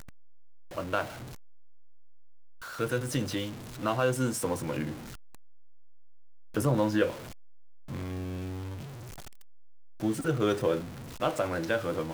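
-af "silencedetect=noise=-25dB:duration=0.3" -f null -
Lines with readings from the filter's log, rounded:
silence_start: 0.00
silence_end: 0.78 | silence_duration: 0.78
silence_start: 1.02
silence_end: 2.80 | silence_duration: 1.79
silence_start: 3.44
silence_end: 3.84 | silence_duration: 0.41
silence_start: 4.84
silence_end: 6.57 | silence_duration: 1.73
silence_start: 7.10
silence_end: 10.03 | silence_duration: 2.93
silence_start: 10.77
silence_end: 11.22 | silence_duration: 0.45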